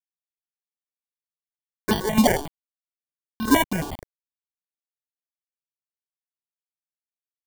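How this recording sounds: aliases and images of a low sample rate 1300 Hz, jitter 0%; chopped level 2.3 Hz, depth 60%, duty 45%; a quantiser's noise floor 6-bit, dither none; notches that jump at a steady rate 11 Hz 430–2100 Hz

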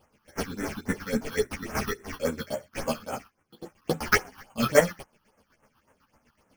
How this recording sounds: aliases and images of a low sample rate 3800 Hz, jitter 0%; phasing stages 6, 3.6 Hz, lowest notch 530–4600 Hz; chopped level 8 Hz, depth 60%, duty 35%; a shimmering, thickened sound

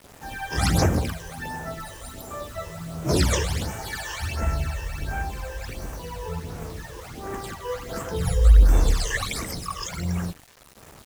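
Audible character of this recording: phasing stages 12, 1.4 Hz, lowest notch 220–4300 Hz; a quantiser's noise floor 8-bit, dither none

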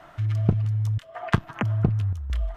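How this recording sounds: chopped level 0.87 Hz, depth 60%, duty 85%

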